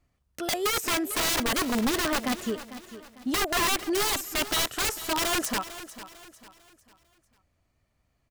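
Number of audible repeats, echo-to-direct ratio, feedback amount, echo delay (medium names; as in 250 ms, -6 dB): 3, -14.0 dB, 38%, 449 ms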